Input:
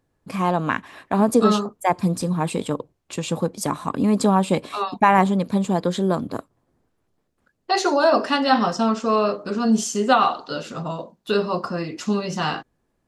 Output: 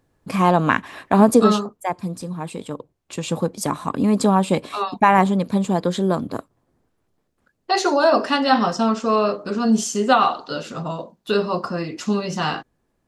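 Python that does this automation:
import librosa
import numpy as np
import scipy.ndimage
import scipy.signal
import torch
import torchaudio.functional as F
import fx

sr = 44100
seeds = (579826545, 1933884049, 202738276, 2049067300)

y = fx.gain(x, sr, db=fx.line((1.24, 5.0), (2.02, -6.5), (2.62, -6.5), (3.32, 1.0)))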